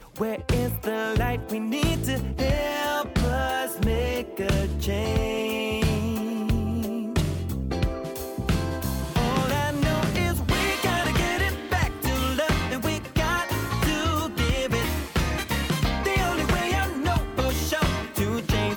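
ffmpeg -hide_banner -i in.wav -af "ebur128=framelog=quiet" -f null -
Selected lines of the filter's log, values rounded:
Integrated loudness:
  I:         -25.7 LUFS
  Threshold: -35.7 LUFS
Loudness range:
  LRA:         2.6 LU
  Threshold: -45.6 LUFS
  LRA low:   -27.1 LUFS
  LRA high:  -24.5 LUFS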